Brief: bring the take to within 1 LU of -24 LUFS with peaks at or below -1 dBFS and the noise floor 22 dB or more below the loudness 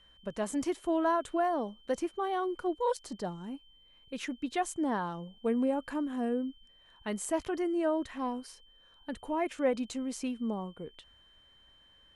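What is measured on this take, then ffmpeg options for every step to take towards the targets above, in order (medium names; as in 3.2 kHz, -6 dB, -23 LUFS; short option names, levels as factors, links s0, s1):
steady tone 3.1 kHz; tone level -60 dBFS; loudness -33.5 LUFS; peak level -17.0 dBFS; loudness target -24.0 LUFS
-> -af "bandreject=f=3100:w=30"
-af "volume=2.99"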